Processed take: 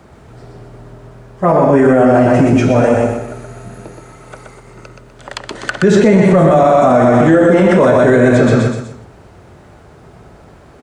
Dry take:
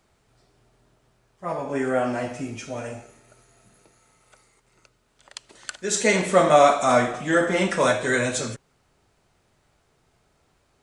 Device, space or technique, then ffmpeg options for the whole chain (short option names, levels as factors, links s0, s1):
mastering chain: -filter_complex "[0:a]asettb=1/sr,asplit=3[s0][s1][s2];[s0]atrim=end=5.824[s3];[s1]atrim=start=5.82:end=6.51,asetpts=PTS-STARTPTS,afade=t=in:d=0.004:c=qsin,afade=t=out:st=0.686:d=0.004:c=qsin,equalizer=f=140:t=o:w=0.75:g=14.5[s4];[s2]atrim=start=6.506[s5];[s3][s4]acrossfade=d=0.004:c1=hsin:c2=qsin[s6];[s6][s5]acrossfade=d=0.004:c1=qsin:c2=hsin,highpass=51,equalizer=f=1600:t=o:w=0.77:g=3,aecho=1:1:124|248|372|496:0.631|0.221|0.0773|0.0271,acrossover=split=800|4300[s7][s8][s9];[s7]acompressor=threshold=0.0794:ratio=4[s10];[s8]acompressor=threshold=0.0282:ratio=4[s11];[s9]acompressor=threshold=0.00501:ratio=4[s12];[s10][s11][s12]amix=inputs=3:normalize=0,acompressor=threshold=0.0355:ratio=1.5,asoftclip=type=tanh:threshold=0.141,tiltshelf=f=1400:g=7.5,alimiter=level_in=9.44:limit=0.891:release=50:level=0:latency=1,volume=0.891"